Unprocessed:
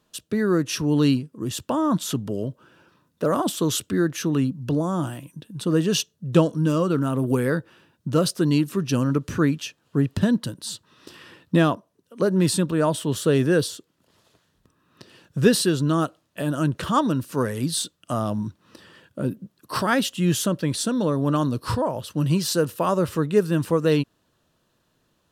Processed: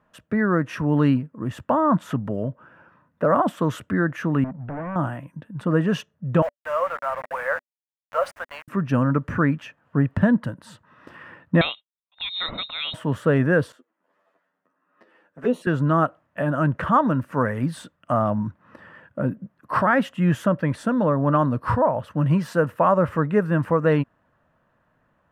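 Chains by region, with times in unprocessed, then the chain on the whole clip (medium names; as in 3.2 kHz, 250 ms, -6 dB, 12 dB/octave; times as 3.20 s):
4.44–4.96 s: companding laws mixed up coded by A + hard clipper -30.5 dBFS + distance through air 300 m
6.42–8.68 s: Chebyshev high-pass 550 Hz, order 5 + word length cut 6-bit, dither none
11.61–12.94 s: expander -38 dBFS + bass shelf 180 Hz +10.5 dB + frequency inversion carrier 3.9 kHz
13.72–15.67 s: ladder high-pass 230 Hz, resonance 25% + touch-sensitive flanger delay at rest 10.7 ms, full sweep at -21.5 dBFS + doubling 12 ms -7 dB
whole clip: FFT filter 250 Hz 0 dB, 380 Hz -7 dB, 580 Hz +4 dB, 1.9 kHz +4 dB, 4 kHz -20 dB; loudness maximiser +9 dB; trim -7 dB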